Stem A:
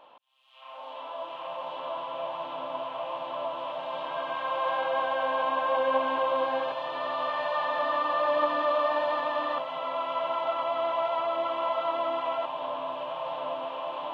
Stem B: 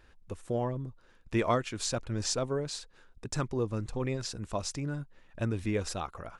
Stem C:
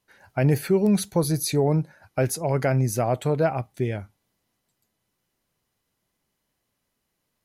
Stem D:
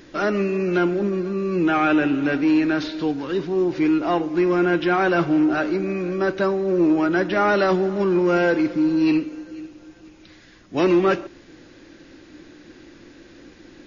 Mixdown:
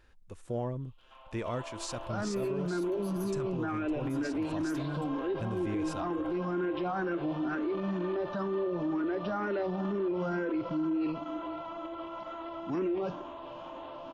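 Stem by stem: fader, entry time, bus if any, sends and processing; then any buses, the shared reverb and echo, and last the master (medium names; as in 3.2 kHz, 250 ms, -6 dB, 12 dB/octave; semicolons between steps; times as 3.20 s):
-4.0 dB, 0.50 s, bus A, no send, small resonant body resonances 340/1400 Hz, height 17 dB, ringing for 95 ms
-7.0 dB, 0.00 s, no bus, no send, harmonic-percussive split harmonic +6 dB
-4.0 dB, 1.80 s, bus A, no send, high-pass 340 Hz; compression, threshold -32 dBFS, peak gain reduction 13.5 dB; peak limiter -26.5 dBFS, peak gain reduction 9 dB
-9.0 dB, 1.95 s, no bus, no send, tilt shelf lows +6 dB, about 1.4 kHz; barber-pole phaser +2.1 Hz
bus A: 0.0 dB, level held to a coarse grid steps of 11 dB; peak limiter -33.5 dBFS, peak gain reduction 11 dB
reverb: none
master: peak limiter -25.5 dBFS, peak gain reduction 11 dB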